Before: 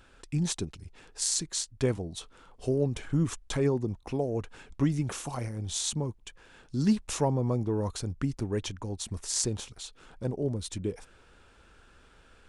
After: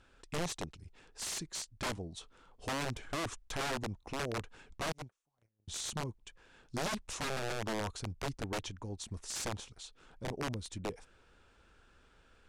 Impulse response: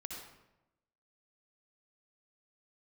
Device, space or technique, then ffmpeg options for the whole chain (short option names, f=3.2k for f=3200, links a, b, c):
overflowing digital effects unit: -filter_complex "[0:a]aeval=exprs='(mod(15*val(0)+1,2)-1)/15':c=same,lowpass=9k,asettb=1/sr,asplit=3[a][b][c];[a]atrim=end=4.924[d];[b]atrim=start=4.92:end=5.68,asetpts=PTS-STARTPTS,afade=t=in:d=0.004:c=qsin,afade=t=out:st=0.756:d=0.004:c=qsin,agate=range=-43dB:threshold=-28dB:ratio=16:detection=peak[e];[c]atrim=start=5.676[f];[d][e]acrossfade=d=0.004:c1=hsin:c2=qsin[g];[g][f]acrossfade=d=0.004:c1=qsin:c2=hsin,volume=-6.5dB"